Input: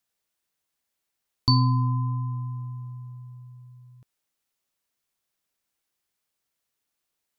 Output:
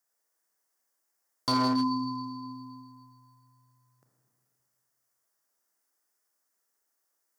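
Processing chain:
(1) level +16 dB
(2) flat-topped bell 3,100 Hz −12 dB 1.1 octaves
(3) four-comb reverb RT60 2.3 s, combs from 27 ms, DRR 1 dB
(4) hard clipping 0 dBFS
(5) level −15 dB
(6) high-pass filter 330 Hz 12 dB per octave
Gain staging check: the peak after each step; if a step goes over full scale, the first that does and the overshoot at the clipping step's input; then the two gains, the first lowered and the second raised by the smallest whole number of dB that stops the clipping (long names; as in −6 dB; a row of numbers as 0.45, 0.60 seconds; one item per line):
+8.0, +6.5, +6.5, 0.0, −15.0, −15.0 dBFS
step 1, 6.5 dB
step 1 +9 dB, step 5 −8 dB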